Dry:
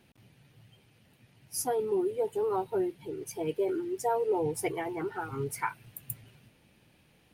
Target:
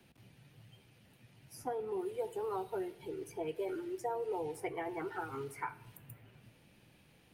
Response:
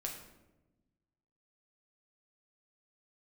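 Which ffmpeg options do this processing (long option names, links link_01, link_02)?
-filter_complex "[0:a]acrossover=split=110|270|620|2500[link_01][link_02][link_03][link_04][link_05];[link_01]acompressor=threshold=-59dB:ratio=4[link_06];[link_02]acompressor=threshold=-57dB:ratio=4[link_07];[link_03]acompressor=threshold=-41dB:ratio=4[link_08];[link_04]acompressor=threshold=-39dB:ratio=4[link_09];[link_05]acompressor=threshold=-56dB:ratio=4[link_10];[link_06][link_07][link_08][link_09][link_10]amix=inputs=5:normalize=0,asplit=2[link_11][link_12];[1:a]atrim=start_sample=2205[link_13];[link_12][link_13]afir=irnorm=-1:irlink=0,volume=-8.5dB[link_14];[link_11][link_14]amix=inputs=2:normalize=0,volume=-3dB"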